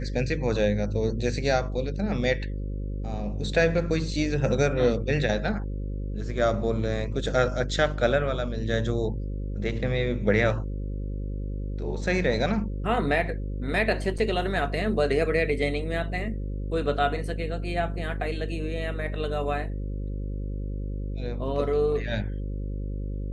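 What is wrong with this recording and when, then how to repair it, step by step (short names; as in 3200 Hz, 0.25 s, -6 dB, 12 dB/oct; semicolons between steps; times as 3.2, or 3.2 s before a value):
buzz 50 Hz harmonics 11 -31 dBFS
14.18–14.19 gap 5.7 ms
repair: de-hum 50 Hz, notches 11; interpolate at 14.18, 5.7 ms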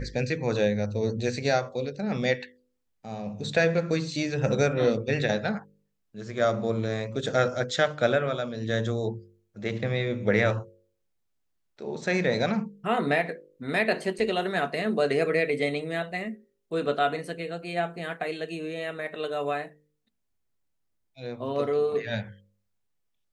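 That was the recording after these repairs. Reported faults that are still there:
none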